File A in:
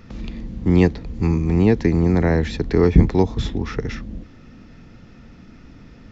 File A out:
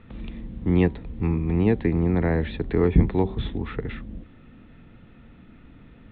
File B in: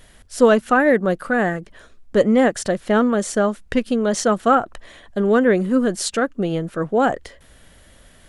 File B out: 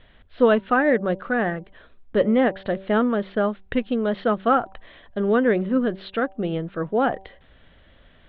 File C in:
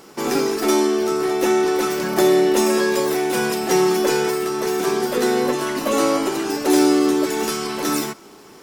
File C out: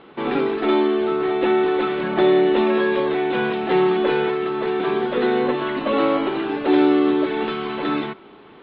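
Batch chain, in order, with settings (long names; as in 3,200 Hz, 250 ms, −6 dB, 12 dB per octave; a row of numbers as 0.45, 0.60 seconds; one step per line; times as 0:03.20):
Butterworth low-pass 3,800 Hz 72 dB per octave
hum removal 192.2 Hz, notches 5
normalise the peak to −6 dBFS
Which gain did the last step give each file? −5.0, −3.5, −0.5 decibels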